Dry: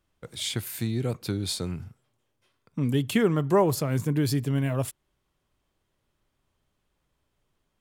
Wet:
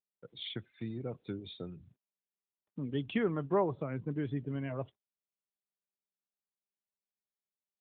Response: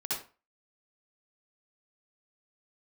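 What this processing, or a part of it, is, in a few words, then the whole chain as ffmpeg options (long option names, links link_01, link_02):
mobile call with aggressive noise cancelling: -af "highpass=frequency=180:poles=1,afftdn=noise_reduction=36:noise_floor=-41,volume=-7dB" -ar 8000 -c:a libopencore_amrnb -b:a 12200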